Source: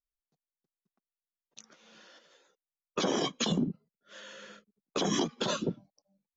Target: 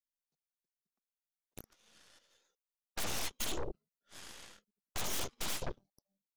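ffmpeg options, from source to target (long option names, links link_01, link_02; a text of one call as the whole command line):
ffmpeg -i in.wav -af "highshelf=frequency=3300:gain=11.5,aeval=exprs='0.266*(cos(1*acos(clip(val(0)/0.266,-1,1)))-cos(1*PI/2))+0.0422*(cos(7*acos(clip(val(0)/0.266,-1,1)))-cos(7*PI/2))+0.0596*(cos(8*acos(clip(val(0)/0.266,-1,1)))-cos(8*PI/2))':channel_layout=same,alimiter=limit=-20dB:level=0:latency=1:release=212,asoftclip=type=tanh:threshold=-34dB,volume=4.5dB" out.wav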